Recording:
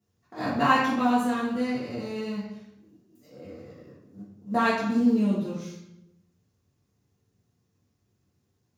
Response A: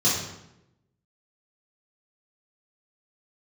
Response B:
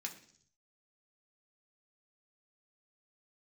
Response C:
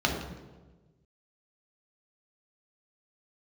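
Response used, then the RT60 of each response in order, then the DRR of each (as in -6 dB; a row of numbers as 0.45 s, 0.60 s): A; 0.90 s, 0.60 s, 1.3 s; -8.5 dB, 0.5 dB, -0.5 dB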